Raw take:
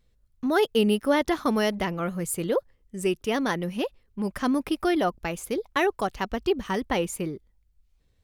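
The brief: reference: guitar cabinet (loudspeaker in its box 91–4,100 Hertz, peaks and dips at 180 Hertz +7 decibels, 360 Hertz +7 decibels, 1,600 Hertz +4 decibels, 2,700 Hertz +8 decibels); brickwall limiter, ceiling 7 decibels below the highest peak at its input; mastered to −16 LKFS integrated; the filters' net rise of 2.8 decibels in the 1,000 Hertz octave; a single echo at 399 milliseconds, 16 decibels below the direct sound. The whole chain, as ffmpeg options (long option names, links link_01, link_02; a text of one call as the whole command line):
ffmpeg -i in.wav -af "equalizer=frequency=1000:width_type=o:gain=3,alimiter=limit=-16.5dB:level=0:latency=1,highpass=91,equalizer=frequency=180:width_type=q:width=4:gain=7,equalizer=frequency=360:width_type=q:width=4:gain=7,equalizer=frequency=1600:width_type=q:width=4:gain=4,equalizer=frequency=2700:width_type=q:width=4:gain=8,lowpass=frequency=4100:width=0.5412,lowpass=frequency=4100:width=1.3066,aecho=1:1:399:0.158,volume=8.5dB" out.wav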